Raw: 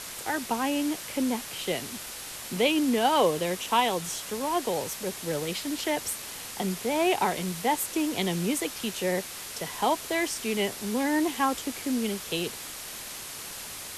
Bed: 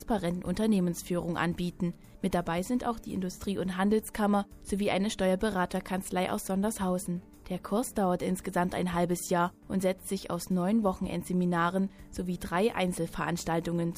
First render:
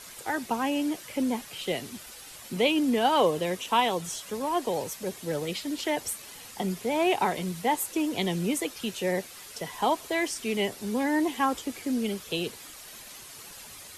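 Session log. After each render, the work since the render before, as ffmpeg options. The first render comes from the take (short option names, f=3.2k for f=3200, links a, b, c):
-af "afftdn=nr=9:nf=-40"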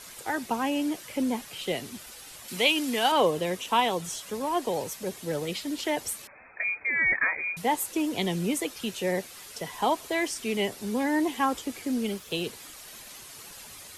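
-filter_complex "[0:a]asettb=1/sr,asplit=3[a][b][c];[a]atrim=end=2.484[d];[b]atrim=start=2.48:end=3.12,asetpts=PTS-STARTPTS,afade=t=in:d=0.004:c=qsin,afade=t=out:st=0.636:d=0.004:c=qsin,tiltshelf=f=910:g=-6.5[e];[c]atrim=start=3.116[f];[d][e]acrossfade=d=0.004:c1=hsin:c2=qsin[g];[g][f]acrossfade=d=0.004:c1=qsin:c2=hsin,asettb=1/sr,asplit=3[h][i][j];[h]atrim=end=6.274[k];[i]atrim=start=6.27:end=7.57,asetpts=PTS-STARTPTS,afade=t=in:d=0.004:c=qsin,afade=t=out:st=1.296:d=0.004:c=qsin,lowpass=f=2.2k:t=q:w=0.5098,lowpass=f=2.2k:t=q:w=0.6013,lowpass=f=2.2k:t=q:w=0.9,lowpass=f=2.2k:t=q:w=2.563,afreqshift=-2600[l];[j]atrim=start=7.566[m];[k][l]acrossfade=d=0.004:c1=hsin:c2=qsin[n];[n][m]acrossfade=d=0.004:c1=qsin:c2=hsin,asettb=1/sr,asplit=3[o][p][q];[o]atrim=end=11.884[r];[p]atrim=start=11.88:end=12.47,asetpts=PTS-STARTPTS,afade=t=in:d=0.004:c=qsin,afade=t=out:st=0.586:d=0.004:c=qsin,aeval=exprs='sgn(val(0))*max(abs(val(0))-0.00178,0)':c=same[s];[q]atrim=start=12.466[t];[r][s]acrossfade=d=0.004:c1=hsin:c2=qsin[u];[u][t]acrossfade=d=0.004:c1=qsin:c2=hsin"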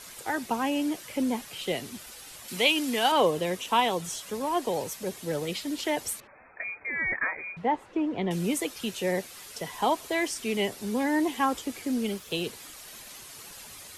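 -filter_complex "[0:a]asettb=1/sr,asplit=3[a][b][c];[a]atrim=end=6.204[d];[b]atrim=start=6.2:end=8.31,asetpts=PTS-STARTPTS,afade=t=in:d=0.004:c=qsin,afade=t=out:st=2.106:d=0.004:c=qsin,lowpass=1.7k[e];[c]atrim=start=8.306[f];[d][e]acrossfade=d=0.004:c1=hsin:c2=qsin[g];[g][f]acrossfade=d=0.004:c1=qsin:c2=hsin"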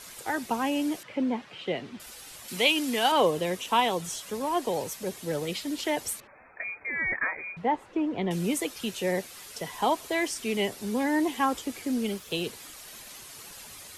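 -filter_complex "[0:a]asettb=1/sr,asplit=3[a][b][c];[a]atrim=end=1.034[d];[b]atrim=start=1.03:end=2,asetpts=PTS-STARTPTS,afade=t=in:d=0.004:c=qsin,afade=t=out:st=0.966:d=0.004:c=qsin,highpass=110,lowpass=2.8k[e];[c]atrim=start=1.996[f];[d][e]acrossfade=d=0.004:c1=hsin:c2=qsin[g];[g][f]acrossfade=d=0.004:c1=qsin:c2=hsin"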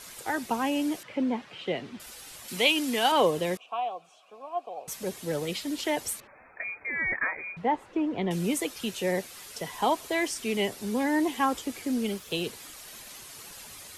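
-filter_complex "[0:a]asettb=1/sr,asplit=3[a][b][c];[a]atrim=end=3.574[d];[b]atrim=start=3.57:end=4.88,asetpts=PTS-STARTPTS,afade=t=in:d=0.004:c=qsin,afade=t=out:st=1.306:d=0.004:c=qsin,asplit=3[e][f][g];[e]bandpass=f=730:t=q:w=8,volume=0dB[h];[f]bandpass=f=1.09k:t=q:w=8,volume=-6dB[i];[g]bandpass=f=2.44k:t=q:w=8,volume=-9dB[j];[h][i][j]amix=inputs=3:normalize=0[k];[c]atrim=start=4.876[l];[d][k]acrossfade=d=0.004:c1=hsin:c2=qsin[m];[m][l]acrossfade=d=0.004:c1=qsin:c2=hsin"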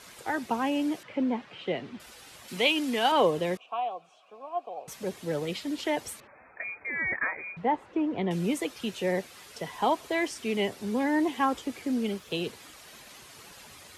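-af "highpass=51,highshelf=f=5.9k:g=-10.5"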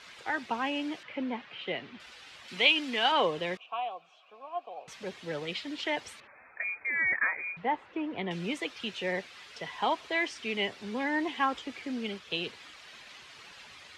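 -af "lowpass=3.2k,tiltshelf=f=1.3k:g=-7.5"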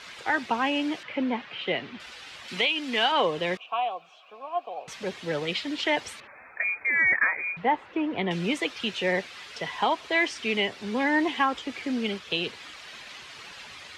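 -af "alimiter=limit=-20dB:level=0:latency=1:release=369,acontrast=67"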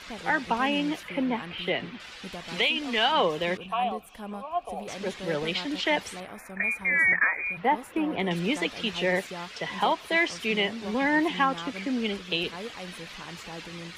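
-filter_complex "[1:a]volume=-11.5dB[a];[0:a][a]amix=inputs=2:normalize=0"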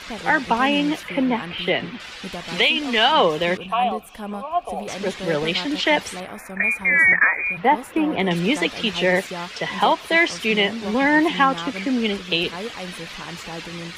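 -af "volume=7dB"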